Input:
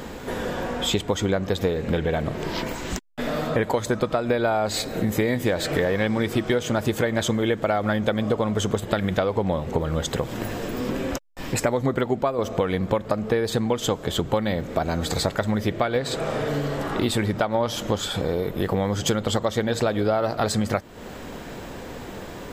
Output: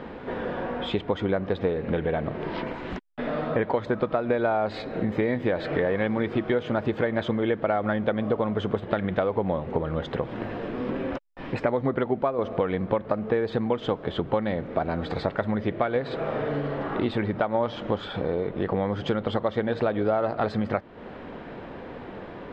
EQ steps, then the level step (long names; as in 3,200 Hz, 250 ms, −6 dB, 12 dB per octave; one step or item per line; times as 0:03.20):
high-frequency loss of the air 380 metres
low-shelf EQ 120 Hz −9.5 dB
parametric band 12,000 Hz −12.5 dB 0.86 octaves
0.0 dB